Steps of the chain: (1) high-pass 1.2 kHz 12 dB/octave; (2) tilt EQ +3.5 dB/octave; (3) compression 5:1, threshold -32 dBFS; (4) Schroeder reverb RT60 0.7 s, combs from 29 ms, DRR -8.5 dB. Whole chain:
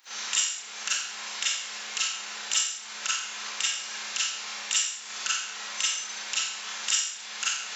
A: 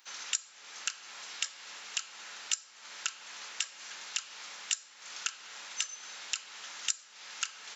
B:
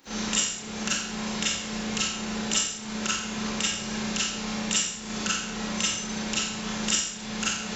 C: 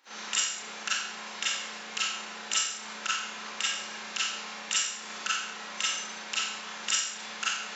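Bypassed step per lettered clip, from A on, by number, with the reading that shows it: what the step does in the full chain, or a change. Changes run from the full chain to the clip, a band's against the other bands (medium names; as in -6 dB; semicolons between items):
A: 4, momentary loudness spread change +3 LU; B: 1, 250 Hz band +28.5 dB; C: 2, 250 Hz band +9.0 dB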